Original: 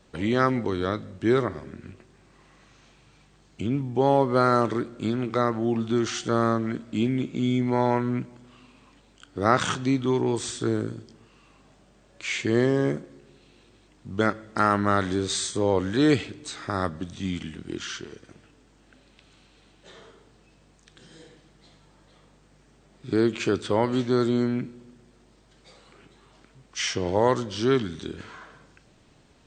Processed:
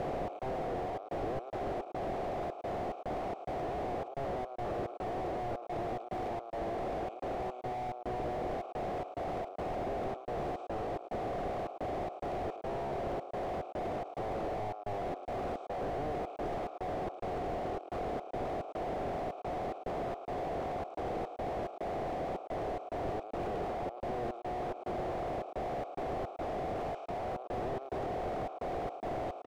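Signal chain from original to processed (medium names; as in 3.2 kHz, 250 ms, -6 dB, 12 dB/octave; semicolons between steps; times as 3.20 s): spectral levelling over time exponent 0.2; vowel filter a; high-order bell 520 Hz +10 dB; peak limiter -19 dBFS, peak gain reduction 14.5 dB; de-hum 64.03 Hz, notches 16; trance gate "xx.xxxx.xx." 108 bpm -60 dB; delay 110 ms -17.5 dB; slew-rate limiter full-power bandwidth 11 Hz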